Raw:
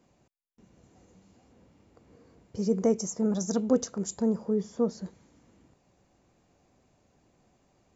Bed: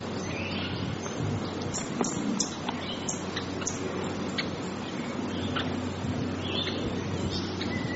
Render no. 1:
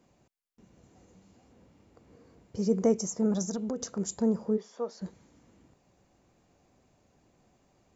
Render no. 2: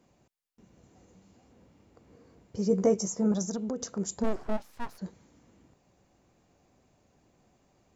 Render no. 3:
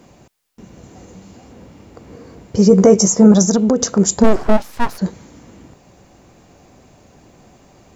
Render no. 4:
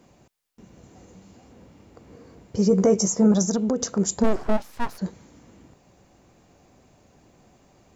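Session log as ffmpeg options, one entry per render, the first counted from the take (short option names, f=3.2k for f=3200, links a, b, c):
-filter_complex "[0:a]asettb=1/sr,asplit=3[a][b][c];[a]atrim=end=3.424[d];[b]atrim=start=3.42:end=3.85,asetpts=PTS-STARTPTS,afade=t=in:d=0.004:c=qsin,afade=t=out:st=0.426:d=0.004:c=qsin,acompressor=threshold=-29dB:ratio=8:attack=3.2:release=140:knee=1:detection=peak[e];[c]atrim=start=3.846[f];[d][e]acrossfade=d=0.004:c1=hsin:c2=qsin[g];[g][f]acrossfade=d=0.004:c1=qsin:c2=hsin,asplit=3[h][i][j];[h]afade=t=out:st=4.56:d=0.02[k];[i]highpass=600,lowpass=5.6k,afade=t=in:st=4.56:d=0.02,afade=t=out:st=5:d=0.02[l];[j]afade=t=in:st=5:d=0.02[m];[k][l][m]amix=inputs=3:normalize=0"
-filter_complex "[0:a]asettb=1/sr,asplit=3[a][b][c];[a]atrim=end=2.694[d];[b]atrim=start=2.69:end=3.32,asetpts=PTS-STARTPTS,afade=t=in:d=0.004:c=qsin,afade=t=out:st=0.626:d=0.004:c=qsin,asplit=2[e][f];[f]adelay=15,volume=-6dB[g];[e][g]amix=inputs=2:normalize=0,atrim=end_sample=27783[h];[c]atrim=start=3.316[i];[d][h]acrossfade=d=0.004:c1=hsin:c2=qsin[j];[j][i]acrossfade=d=0.004:c1=qsin:c2=hsin,asplit=3[k][l][m];[k]afade=t=out:st=4.23:d=0.02[n];[l]aeval=exprs='abs(val(0))':c=same,afade=t=in:st=4.23:d=0.02,afade=t=out:st=4.97:d=0.02[o];[m]afade=t=in:st=4.97:d=0.02[p];[n][o][p]amix=inputs=3:normalize=0"
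-af "acontrast=90,alimiter=level_in=11.5dB:limit=-1dB:release=50:level=0:latency=1"
-af "volume=-9dB"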